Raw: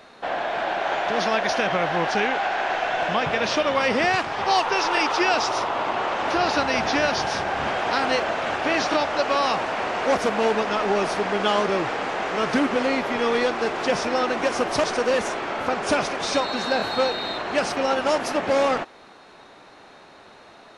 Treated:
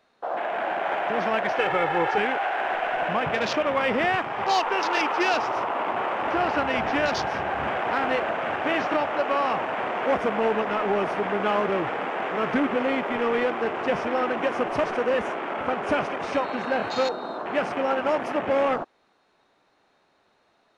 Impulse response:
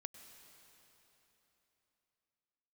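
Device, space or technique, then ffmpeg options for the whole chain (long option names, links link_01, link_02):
parallel distortion: -filter_complex "[0:a]afwtdn=0.0355,asplit=2[link_01][link_02];[link_02]asoftclip=type=hard:threshold=-23.5dB,volume=-12.5dB[link_03];[link_01][link_03]amix=inputs=2:normalize=0,asettb=1/sr,asplit=3[link_04][link_05][link_06];[link_04]atrim=end=1.584[link_07];[link_05]atrim=start=1.58:end=2.18,asetpts=PTS-STARTPTS,afade=type=in:duration=0.004:curve=qsin,afade=type=out:start_time=0.596:duration=0.004:curve=qsin,aecho=1:1:2.3:0.78,atrim=end_sample=26460[link_08];[link_06]atrim=start=2.176[link_09];[link_07][link_08]acrossfade=duration=0.004:curve1=hsin:curve2=qsin[link_10];[link_10][link_09]acrossfade=duration=0.004:curve1=qsin:curve2=hsin,volume=-3dB"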